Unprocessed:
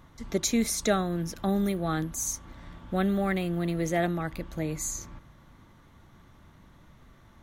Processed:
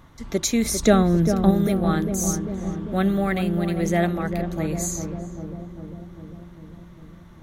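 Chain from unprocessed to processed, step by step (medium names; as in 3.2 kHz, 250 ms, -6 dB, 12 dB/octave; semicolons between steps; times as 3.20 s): 0.65–1.51 s: bass shelf 480 Hz +9 dB; on a send: filtered feedback delay 398 ms, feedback 73%, low-pass 830 Hz, level -6 dB; on the sum: trim +4 dB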